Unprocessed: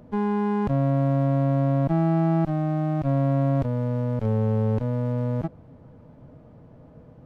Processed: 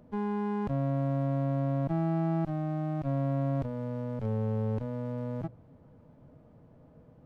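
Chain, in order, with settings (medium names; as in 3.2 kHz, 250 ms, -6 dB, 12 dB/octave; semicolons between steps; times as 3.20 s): hum notches 60/120 Hz; trim -7.5 dB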